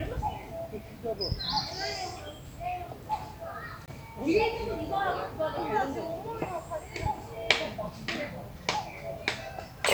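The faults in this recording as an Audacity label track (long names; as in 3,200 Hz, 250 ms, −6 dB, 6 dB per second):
3.860000	3.880000	drop-out 18 ms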